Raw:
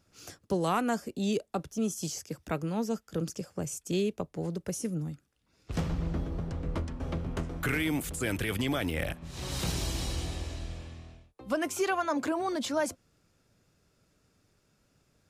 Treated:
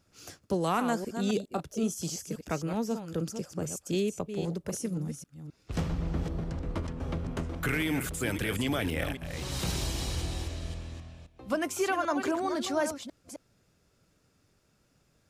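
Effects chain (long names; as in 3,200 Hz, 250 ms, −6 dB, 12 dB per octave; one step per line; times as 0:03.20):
delay that plays each chunk backwards 262 ms, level −8.5 dB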